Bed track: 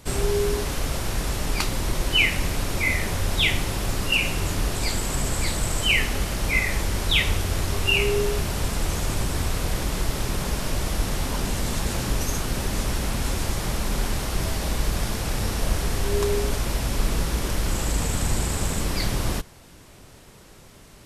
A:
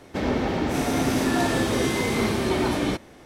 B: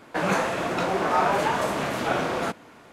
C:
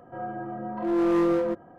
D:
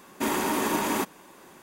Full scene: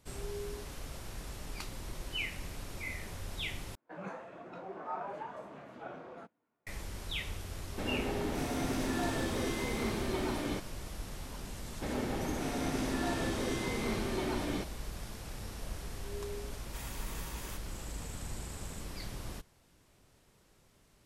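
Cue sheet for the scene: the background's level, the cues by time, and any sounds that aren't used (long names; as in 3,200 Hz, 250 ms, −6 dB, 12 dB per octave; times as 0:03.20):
bed track −17.5 dB
0:03.75: overwrite with B −16.5 dB + every bin expanded away from the loudest bin 1.5 to 1
0:07.63: mix in A −11.5 dB
0:11.67: mix in A −11.5 dB + low-pass filter 12,000 Hz
0:16.53: mix in D −13.5 dB + guitar amp tone stack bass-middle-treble 10-0-10
not used: C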